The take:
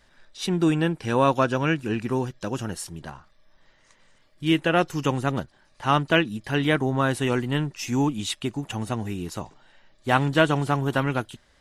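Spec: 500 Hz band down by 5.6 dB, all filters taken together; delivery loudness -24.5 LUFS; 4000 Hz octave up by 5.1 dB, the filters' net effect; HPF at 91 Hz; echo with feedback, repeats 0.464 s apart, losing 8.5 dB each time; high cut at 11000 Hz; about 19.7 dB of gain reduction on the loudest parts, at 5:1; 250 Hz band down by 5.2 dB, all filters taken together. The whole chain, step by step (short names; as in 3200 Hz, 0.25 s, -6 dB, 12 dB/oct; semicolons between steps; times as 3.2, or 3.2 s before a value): HPF 91 Hz; LPF 11000 Hz; bell 250 Hz -5 dB; bell 500 Hz -6 dB; bell 4000 Hz +7.5 dB; compressor 5:1, threshold -39 dBFS; feedback echo 0.464 s, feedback 38%, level -8.5 dB; gain +16.5 dB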